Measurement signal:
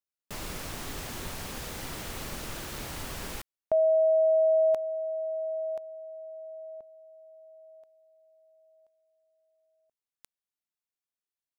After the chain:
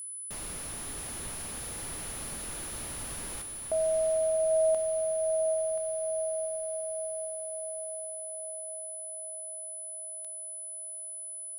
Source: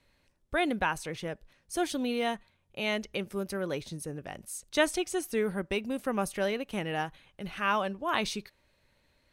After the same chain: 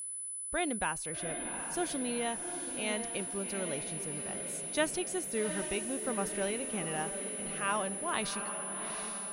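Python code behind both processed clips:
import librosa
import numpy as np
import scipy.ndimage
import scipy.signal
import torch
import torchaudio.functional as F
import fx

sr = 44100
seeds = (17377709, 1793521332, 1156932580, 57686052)

y = fx.echo_diffused(x, sr, ms=765, feedback_pct=58, wet_db=-7.5)
y = y + 10.0 ** (-33.0 / 20.0) * np.sin(2.0 * np.pi * 10000.0 * np.arange(len(y)) / sr)
y = y * 10.0 ** (-5.0 / 20.0)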